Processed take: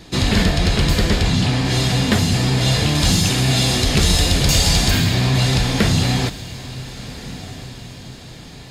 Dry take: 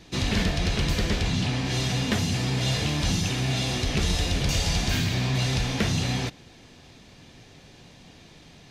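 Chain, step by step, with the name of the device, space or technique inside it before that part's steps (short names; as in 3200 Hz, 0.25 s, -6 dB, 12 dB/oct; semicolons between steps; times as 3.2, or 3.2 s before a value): exciter from parts (in parallel at -8 dB: HPF 2400 Hz 24 dB/oct + soft clip -25.5 dBFS, distortion -18 dB); on the sum: notch 5900 Hz, Q 7; 2.95–4.91 high shelf 4300 Hz +6 dB; diffused feedback echo 1.374 s, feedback 41%, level -16 dB; gain +8.5 dB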